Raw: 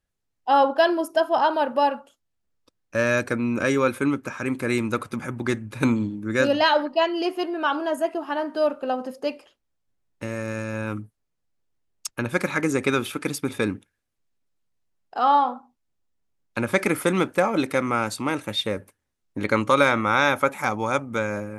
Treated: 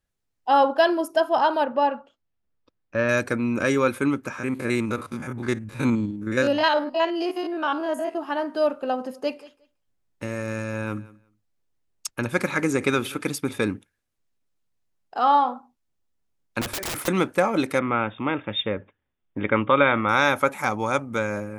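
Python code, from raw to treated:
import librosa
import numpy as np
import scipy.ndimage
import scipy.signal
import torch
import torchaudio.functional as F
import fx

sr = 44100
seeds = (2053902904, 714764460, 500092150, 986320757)

y = fx.air_absorb(x, sr, metres=210.0, at=(1.64, 3.09))
y = fx.spec_steps(y, sr, hold_ms=50, at=(4.37, 8.15), fade=0.02)
y = fx.echo_feedback(y, sr, ms=180, feedback_pct=17, wet_db=-20.5, at=(9.13, 13.24), fade=0.02)
y = fx.overflow_wrap(y, sr, gain_db=24.0, at=(16.61, 17.08))
y = fx.brickwall_lowpass(y, sr, high_hz=3700.0, at=(17.79, 20.09))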